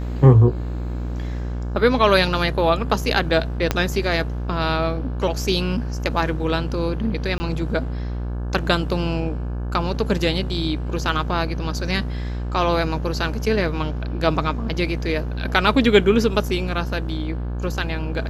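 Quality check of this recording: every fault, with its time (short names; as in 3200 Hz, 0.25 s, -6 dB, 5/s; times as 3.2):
buzz 60 Hz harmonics 29 -26 dBFS
3.71 pop -4 dBFS
7.38–7.4 gap 20 ms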